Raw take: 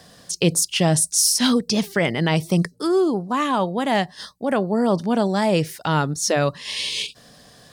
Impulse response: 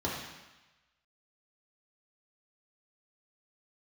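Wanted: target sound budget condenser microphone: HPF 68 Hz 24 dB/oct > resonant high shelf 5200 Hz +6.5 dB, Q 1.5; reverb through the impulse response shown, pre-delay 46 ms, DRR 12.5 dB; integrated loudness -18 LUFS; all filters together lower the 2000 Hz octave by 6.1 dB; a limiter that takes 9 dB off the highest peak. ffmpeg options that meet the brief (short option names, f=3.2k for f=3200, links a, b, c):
-filter_complex "[0:a]equalizer=f=2k:t=o:g=-7,alimiter=limit=-15.5dB:level=0:latency=1,asplit=2[a][b];[1:a]atrim=start_sample=2205,adelay=46[c];[b][c]afir=irnorm=-1:irlink=0,volume=-20dB[d];[a][d]amix=inputs=2:normalize=0,highpass=f=68:w=0.5412,highpass=f=68:w=1.3066,highshelf=f=5.2k:t=q:w=1.5:g=6.5,volume=4.5dB"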